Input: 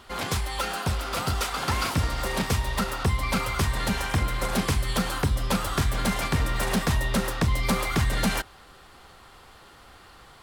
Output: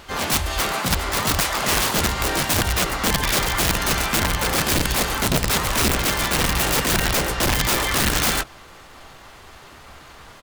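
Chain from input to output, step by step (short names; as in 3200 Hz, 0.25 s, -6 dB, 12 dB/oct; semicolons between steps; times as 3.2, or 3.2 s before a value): harmoniser -5 st -6 dB, -3 st -1 dB, +7 st -2 dB; wrapped overs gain 16.5 dB; gain +2.5 dB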